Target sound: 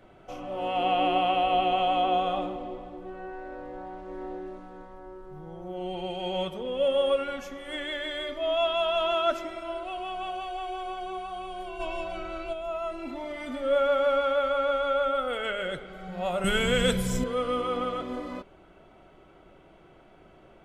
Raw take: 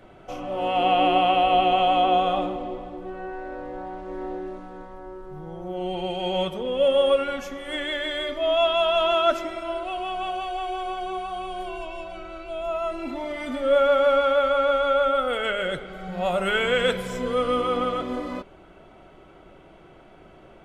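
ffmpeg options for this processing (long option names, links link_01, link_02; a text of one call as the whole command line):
ffmpeg -i in.wav -filter_complex "[0:a]asplit=3[link_01][link_02][link_03];[link_01]afade=type=out:start_time=11.79:duration=0.02[link_04];[link_02]acontrast=78,afade=type=in:start_time=11.79:duration=0.02,afade=type=out:start_time=12.52:duration=0.02[link_05];[link_03]afade=type=in:start_time=12.52:duration=0.02[link_06];[link_04][link_05][link_06]amix=inputs=3:normalize=0,asettb=1/sr,asplit=3[link_07][link_08][link_09];[link_07]atrim=end=16.444[link_10];[link_08]atrim=start=16.44:end=17.24,asetpts=PTS-STARTPTS,afade=type=in:duration=0.004:curve=qsin,afade=type=out:start_time=0.796:duration=0.004:curve=qsin,bass=frequency=250:gain=15,treble=frequency=4000:gain=13[link_11];[link_09]atrim=start=17.236[link_12];[link_10][link_11]acrossfade=duration=0.004:curve1=hsin:curve2=qsin[link_13];[link_13][link_12]acrossfade=duration=0.004:curve1=qsin:curve2=hsin,volume=-5dB" out.wav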